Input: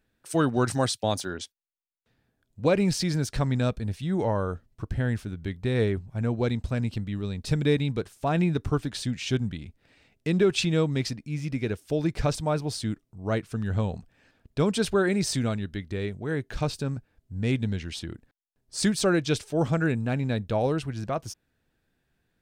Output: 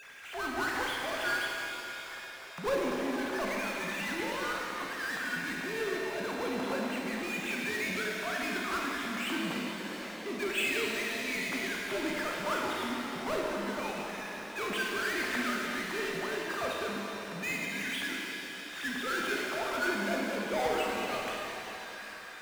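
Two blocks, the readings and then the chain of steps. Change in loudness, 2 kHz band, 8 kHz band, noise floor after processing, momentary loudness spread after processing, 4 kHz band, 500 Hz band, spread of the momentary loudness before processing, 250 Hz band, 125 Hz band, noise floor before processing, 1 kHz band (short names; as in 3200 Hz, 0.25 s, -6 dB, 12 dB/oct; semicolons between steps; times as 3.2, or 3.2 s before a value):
-6.0 dB, +5.0 dB, -5.0 dB, -43 dBFS, 7 LU, -1.5 dB, -7.0 dB, 11 LU, -9.5 dB, -22.5 dB, -76 dBFS, -0.5 dB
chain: sine-wave speech; tremolo 1.5 Hz, depth 78%; LFO band-pass saw down 0.29 Hz 860–2500 Hz; power-law curve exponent 0.35; flutter echo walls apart 9.3 m, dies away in 0.32 s; shimmer reverb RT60 3.5 s, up +7 st, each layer -8 dB, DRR -1.5 dB; gain -7.5 dB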